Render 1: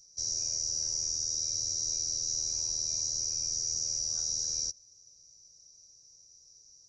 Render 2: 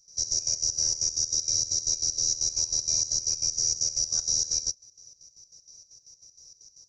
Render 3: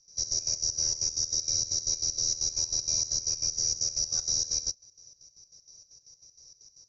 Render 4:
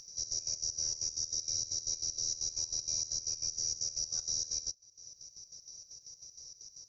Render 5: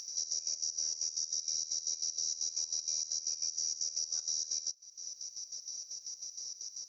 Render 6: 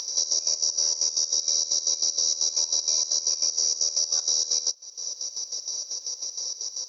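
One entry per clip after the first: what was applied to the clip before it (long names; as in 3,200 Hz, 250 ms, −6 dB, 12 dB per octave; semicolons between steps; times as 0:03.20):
gate pattern ".xx.x.x.x" 193 BPM −12 dB; level +7.5 dB
low-pass filter 6,000 Hz 24 dB per octave
upward compression, threshold −33 dBFS; high-shelf EQ 7,300 Hz +5.5 dB; level −8.5 dB
high-pass filter 840 Hz 6 dB per octave; downward compressor 3 to 1, threshold −42 dBFS, peak gain reduction 9 dB; level +7.5 dB
graphic EQ with 10 bands 125 Hz −12 dB, 250 Hz +9 dB, 500 Hz +12 dB, 1,000 Hz +12 dB, 4,000 Hz +11 dB; level +5.5 dB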